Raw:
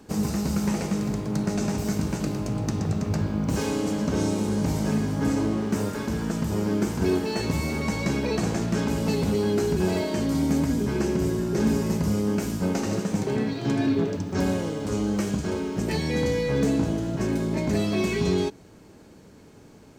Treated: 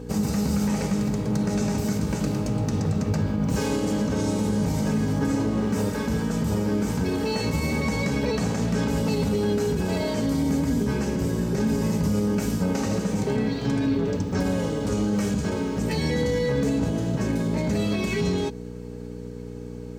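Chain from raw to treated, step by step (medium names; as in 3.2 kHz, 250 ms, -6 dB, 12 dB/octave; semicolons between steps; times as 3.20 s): peak limiter -19 dBFS, peak gain reduction 7 dB; mains buzz 60 Hz, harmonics 8, -39 dBFS -1 dB/octave; comb of notches 350 Hz; trim +3.5 dB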